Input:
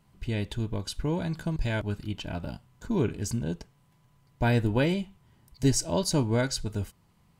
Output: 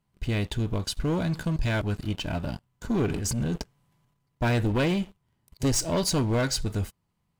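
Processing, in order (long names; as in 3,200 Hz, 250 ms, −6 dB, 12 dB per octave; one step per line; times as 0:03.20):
leveller curve on the samples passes 3
0:03.06–0:04.42: transient designer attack −9 dB, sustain +8 dB
level −6 dB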